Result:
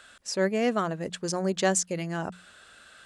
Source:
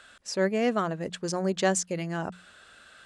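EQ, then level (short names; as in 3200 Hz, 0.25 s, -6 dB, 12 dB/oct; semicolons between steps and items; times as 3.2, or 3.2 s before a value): high shelf 7300 Hz +5.5 dB; 0.0 dB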